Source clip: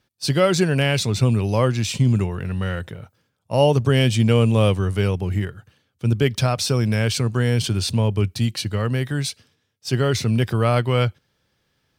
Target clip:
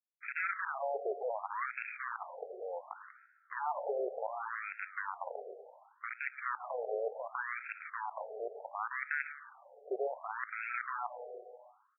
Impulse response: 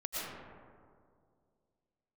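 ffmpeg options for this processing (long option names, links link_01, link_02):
-filter_complex "[0:a]bandreject=frequency=600:width=19,acompressor=threshold=-28dB:ratio=2.5,acrusher=bits=5:dc=4:mix=0:aa=0.000001,aecho=1:1:108|173:0.133|0.158,asplit=2[link_01][link_02];[1:a]atrim=start_sample=2205,lowpass=frequency=1500:width=0.5412,lowpass=frequency=1500:width=1.3066,adelay=116[link_03];[link_02][link_03]afir=irnorm=-1:irlink=0,volume=-17dB[link_04];[link_01][link_04]amix=inputs=2:normalize=0,afftfilt=real='re*between(b*sr/1024,540*pow(1900/540,0.5+0.5*sin(2*PI*0.68*pts/sr))/1.41,540*pow(1900/540,0.5+0.5*sin(2*PI*0.68*pts/sr))*1.41)':imag='im*between(b*sr/1024,540*pow(1900/540,0.5+0.5*sin(2*PI*0.68*pts/sr))/1.41,540*pow(1900/540,0.5+0.5*sin(2*PI*0.68*pts/sr))*1.41)':win_size=1024:overlap=0.75"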